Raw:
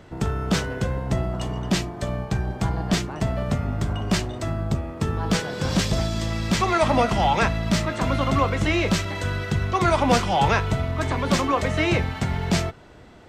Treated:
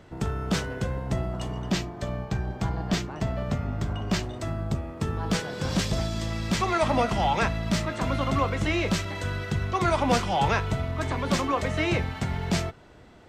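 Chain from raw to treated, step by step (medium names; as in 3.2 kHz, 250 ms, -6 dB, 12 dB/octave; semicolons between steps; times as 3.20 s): 1.71–4.23 s: peaking EQ 10 kHz -9.5 dB 0.46 oct; trim -4 dB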